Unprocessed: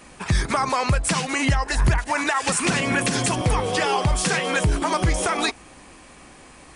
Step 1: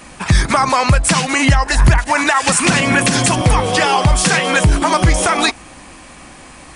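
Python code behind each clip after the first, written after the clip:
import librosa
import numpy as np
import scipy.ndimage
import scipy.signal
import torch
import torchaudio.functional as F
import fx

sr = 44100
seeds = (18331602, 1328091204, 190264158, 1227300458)

y = fx.peak_eq(x, sr, hz=420.0, db=-6.5, octaves=0.33)
y = F.gain(torch.from_numpy(y), 8.5).numpy()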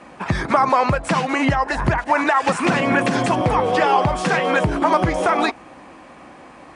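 y = fx.bandpass_q(x, sr, hz=560.0, q=0.56)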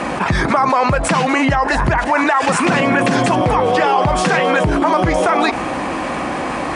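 y = fx.env_flatten(x, sr, amount_pct=70)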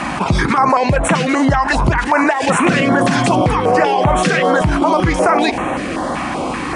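y = fx.filter_held_notch(x, sr, hz=5.2, low_hz=460.0, high_hz=4800.0)
y = F.gain(torch.from_numpy(y), 2.5).numpy()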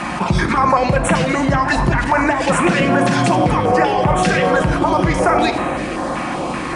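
y = fx.room_shoebox(x, sr, seeds[0], volume_m3=2000.0, walls='mixed', distance_m=0.91)
y = F.gain(torch.from_numpy(y), -2.5).numpy()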